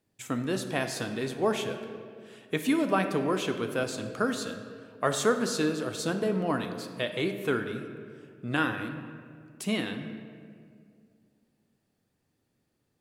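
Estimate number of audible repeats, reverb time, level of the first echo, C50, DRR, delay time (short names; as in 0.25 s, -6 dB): none, 2.2 s, none, 8.0 dB, 6.0 dB, none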